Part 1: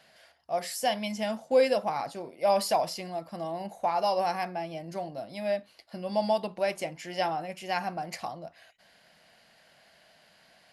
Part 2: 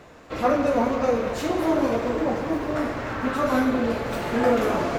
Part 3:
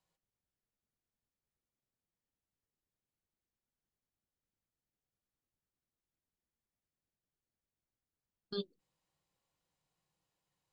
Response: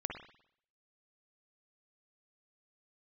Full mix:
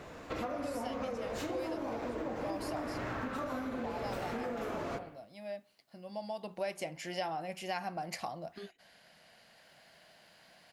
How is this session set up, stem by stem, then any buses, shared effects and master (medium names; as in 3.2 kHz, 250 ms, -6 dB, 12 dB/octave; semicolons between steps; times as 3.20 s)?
6.33 s -13 dB -> 6.65 s -1.5 dB, 0.00 s, send -22 dB, none
-5.0 dB, 0.00 s, send -3.5 dB, compression, threshold -31 dBFS, peak gain reduction 14 dB
-5.5 dB, 0.05 s, no send, three bands compressed up and down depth 70%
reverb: on, pre-delay 49 ms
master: compression 3:1, threshold -35 dBFS, peak gain reduction 8.5 dB